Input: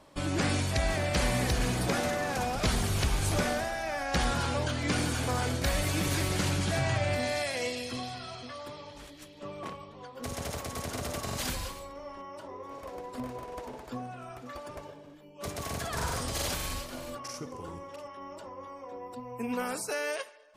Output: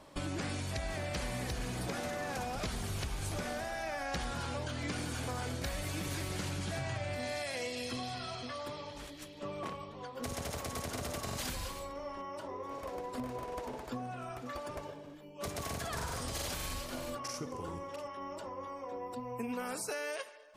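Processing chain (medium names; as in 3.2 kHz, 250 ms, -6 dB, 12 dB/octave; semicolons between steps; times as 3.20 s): compression, threshold -36 dBFS, peak gain reduction 12.5 dB; trim +1 dB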